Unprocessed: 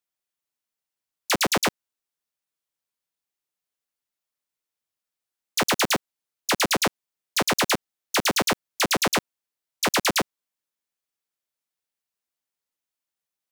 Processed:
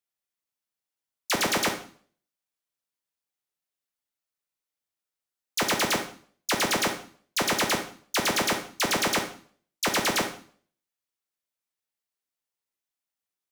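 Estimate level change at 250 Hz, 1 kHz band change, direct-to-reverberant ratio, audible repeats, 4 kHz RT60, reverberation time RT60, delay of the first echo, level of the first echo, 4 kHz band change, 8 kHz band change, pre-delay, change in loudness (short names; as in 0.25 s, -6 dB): -2.5 dB, -2.5 dB, 5.0 dB, none, 0.45 s, 0.50 s, none, none, -2.5 dB, -2.0 dB, 23 ms, -2.5 dB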